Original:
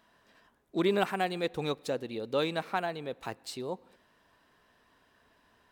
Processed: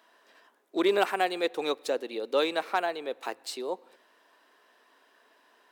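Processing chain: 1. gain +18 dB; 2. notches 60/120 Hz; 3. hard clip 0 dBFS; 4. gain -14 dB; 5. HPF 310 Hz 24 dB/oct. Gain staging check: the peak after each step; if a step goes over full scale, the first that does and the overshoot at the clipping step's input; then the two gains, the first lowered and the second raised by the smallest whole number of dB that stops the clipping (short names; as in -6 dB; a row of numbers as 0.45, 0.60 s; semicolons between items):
+3.5, +3.5, 0.0, -14.0, -10.0 dBFS; step 1, 3.5 dB; step 1 +14 dB, step 4 -10 dB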